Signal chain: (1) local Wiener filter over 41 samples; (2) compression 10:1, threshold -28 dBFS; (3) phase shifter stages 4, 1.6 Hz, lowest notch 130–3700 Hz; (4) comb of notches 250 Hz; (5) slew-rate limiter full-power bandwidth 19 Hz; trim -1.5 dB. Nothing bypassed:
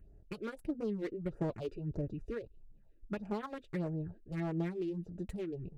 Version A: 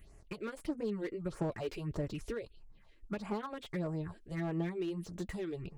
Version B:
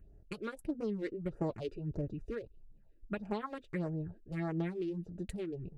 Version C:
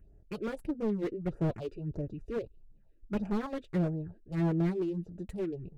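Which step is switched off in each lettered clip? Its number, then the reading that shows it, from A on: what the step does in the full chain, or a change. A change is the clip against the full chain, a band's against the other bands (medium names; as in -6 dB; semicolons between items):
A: 1, 4 kHz band +5.5 dB; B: 5, distortion -17 dB; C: 2, mean gain reduction 3.5 dB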